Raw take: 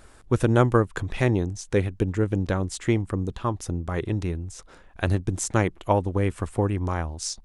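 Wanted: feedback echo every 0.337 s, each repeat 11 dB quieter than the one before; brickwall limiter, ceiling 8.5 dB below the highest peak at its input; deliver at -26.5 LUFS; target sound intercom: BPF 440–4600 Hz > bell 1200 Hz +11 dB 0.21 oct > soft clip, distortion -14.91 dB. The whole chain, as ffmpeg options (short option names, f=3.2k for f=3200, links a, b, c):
-af "alimiter=limit=-13.5dB:level=0:latency=1,highpass=440,lowpass=4.6k,equalizer=f=1.2k:t=o:w=0.21:g=11,aecho=1:1:337|674|1011:0.282|0.0789|0.0221,asoftclip=threshold=-19dB,volume=7dB"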